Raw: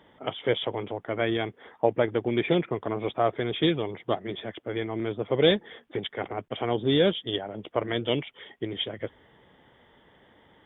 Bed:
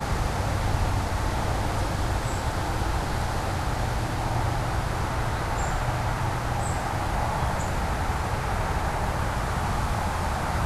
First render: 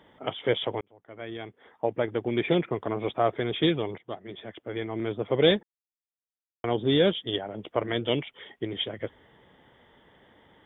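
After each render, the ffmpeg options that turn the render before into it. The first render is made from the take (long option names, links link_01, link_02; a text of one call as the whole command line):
ffmpeg -i in.wav -filter_complex "[0:a]asplit=5[link_01][link_02][link_03][link_04][link_05];[link_01]atrim=end=0.81,asetpts=PTS-STARTPTS,afade=type=out:start_time=0.806:duration=0.004:curve=hsin[link_06];[link_02]atrim=start=0.81:end=3.98,asetpts=PTS-STARTPTS,afade=type=in:duration=1.77,afade=type=out:start_time=3.166:duration=0.004:curve=hsin:silence=0.237137[link_07];[link_03]atrim=start=3.98:end=5.63,asetpts=PTS-STARTPTS,afade=type=in:duration=1.13:silence=0.237137,afade=type=out:start_time=1.646:duration=0.004:curve=hsin[link_08];[link_04]atrim=start=5.63:end=6.64,asetpts=PTS-STARTPTS,volume=0[link_09];[link_05]atrim=start=6.64,asetpts=PTS-STARTPTS,afade=type=in:duration=0.004:curve=hsin[link_10];[link_06][link_07][link_08][link_09][link_10]concat=n=5:v=0:a=1" out.wav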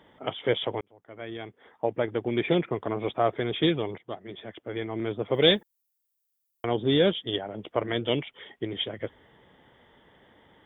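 ffmpeg -i in.wav -filter_complex "[0:a]asettb=1/sr,asplit=3[link_01][link_02][link_03];[link_01]atrim=end=5.344[link_04];[link_02]atrim=start=5.34:end=6.65,asetpts=PTS-STARTPTS,afade=type=in:duration=0.004:curve=qsin,afade=type=out:start_time=1.306:duration=0.004:curve=qsin,aemphasis=mode=production:type=75fm[link_05];[link_03]atrim=start=6.646[link_06];[link_04][link_05]acrossfade=duration=0.004:curve1=hsin:curve2=qsin[link_07];[link_07][link_06]acrossfade=duration=0.004:curve1=qsin:curve2=hsin" out.wav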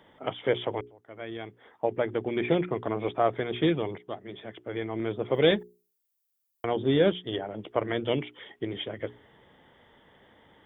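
ffmpeg -i in.wav -filter_complex "[0:a]acrossover=split=2900[link_01][link_02];[link_02]acompressor=threshold=-49dB:ratio=4:attack=1:release=60[link_03];[link_01][link_03]amix=inputs=2:normalize=0,bandreject=frequency=60:width_type=h:width=6,bandreject=frequency=120:width_type=h:width=6,bandreject=frequency=180:width_type=h:width=6,bandreject=frequency=240:width_type=h:width=6,bandreject=frequency=300:width_type=h:width=6,bandreject=frequency=360:width_type=h:width=6,bandreject=frequency=420:width_type=h:width=6" out.wav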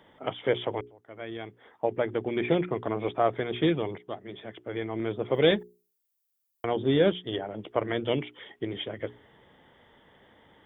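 ffmpeg -i in.wav -af anull out.wav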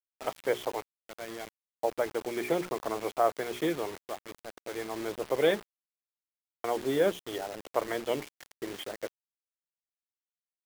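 ffmpeg -i in.wav -af "bandpass=frequency=950:width_type=q:width=0.64:csg=0,acrusher=bits=6:mix=0:aa=0.000001" out.wav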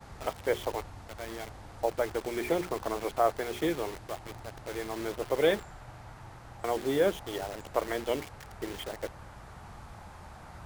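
ffmpeg -i in.wav -i bed.wav -filter_complex "[1:a]volume=-21dB[link_01];[0:a][link_01]amix=inputs=2:normalize=0" out.wav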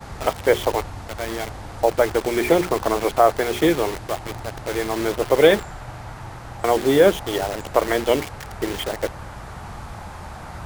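ffmpeg -i in.wav -af "volume=12dB,alimiter=limit=-3dB:level=0:latency=1" out.wav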